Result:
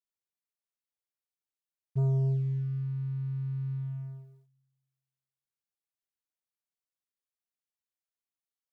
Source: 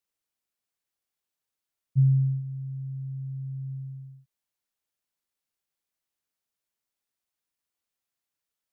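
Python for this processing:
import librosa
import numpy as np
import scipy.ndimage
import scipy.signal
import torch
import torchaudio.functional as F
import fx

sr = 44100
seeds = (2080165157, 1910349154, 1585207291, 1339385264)

y = fx.rev_schroeder(x, sr, rt60_s=1.5, comb_ms=29, drr_db=9.0)
y = fx.leveller(y, sr, passes=2)
y = y * 10.0 ** (-8.5 / 20.0)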